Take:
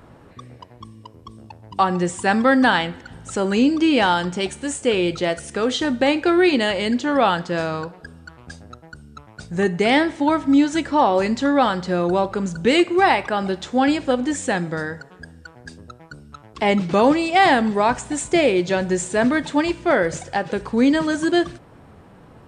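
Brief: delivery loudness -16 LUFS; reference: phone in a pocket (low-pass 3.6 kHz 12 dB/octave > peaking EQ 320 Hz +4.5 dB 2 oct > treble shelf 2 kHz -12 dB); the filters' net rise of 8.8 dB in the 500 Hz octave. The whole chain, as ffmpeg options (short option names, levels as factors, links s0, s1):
-af "lowpass=3600,equalizer=f=320:t=o:w=2:g=4.5,equalizer=f=500:t=o:g=8,highshelf=f=2000:g=-12,volume=0.75"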